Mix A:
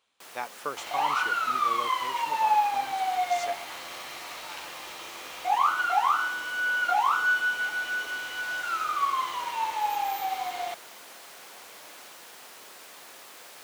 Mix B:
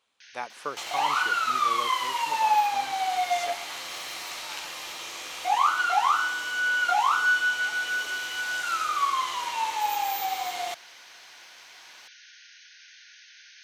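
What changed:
first sound: add linear-phase brick-wall band-pass 1,400–6,600 Hz
second sound: add parametric band 8,900 Hz +9 dB 2.7 octaves

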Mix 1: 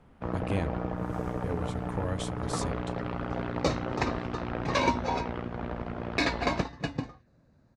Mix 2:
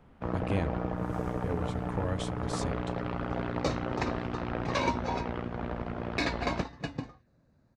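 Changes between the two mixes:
speech: add high-shelf EQ 10,000 Hz −11.5 dB
second sound −3.5 dB

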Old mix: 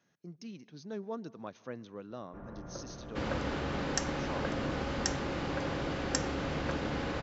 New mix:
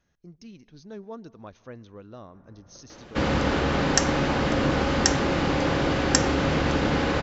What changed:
speech: remove high-pass filter 130 Hz 24 dB per octave
first sound −11.0 dB
second sound +11.5 dB

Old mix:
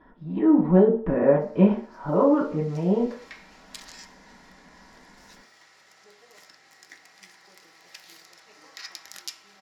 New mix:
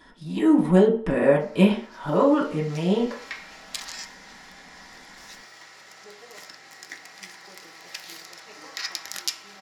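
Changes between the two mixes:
speech: remove low-pass filter 1,200 Hz 12 dB per octave
background +8.5 dB

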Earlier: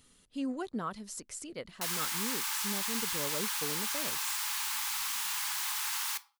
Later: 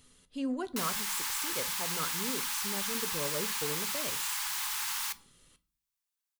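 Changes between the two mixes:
speech: send on
background: entry −1.05 s

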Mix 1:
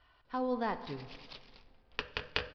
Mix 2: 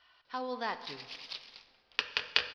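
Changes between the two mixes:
background: send +9.5 dB
master: add spectral tilt +4 dB per octave

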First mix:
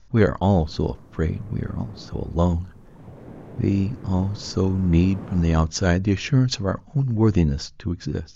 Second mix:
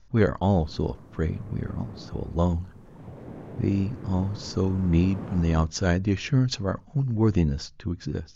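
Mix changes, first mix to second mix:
speech −3.5 dB
master: add high-shelf EQ 9,100 Hz −4 dB

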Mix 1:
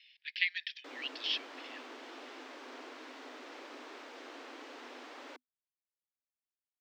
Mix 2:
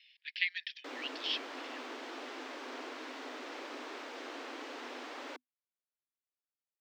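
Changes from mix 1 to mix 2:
speech: send −11.5 dB
background +4.5 dB

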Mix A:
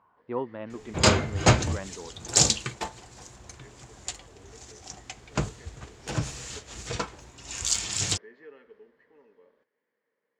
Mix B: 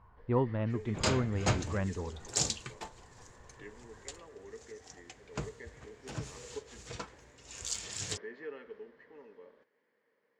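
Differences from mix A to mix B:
speech: remove high-pass filter 280 Hz 12 dB per octave
first sound +5.0 dB
second sound −11.0 dB

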